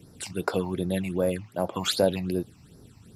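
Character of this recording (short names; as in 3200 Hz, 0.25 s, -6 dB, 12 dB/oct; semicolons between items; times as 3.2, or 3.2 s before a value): phasing stages 8, 2.6 Hz, lowest notch 430–3100 Hz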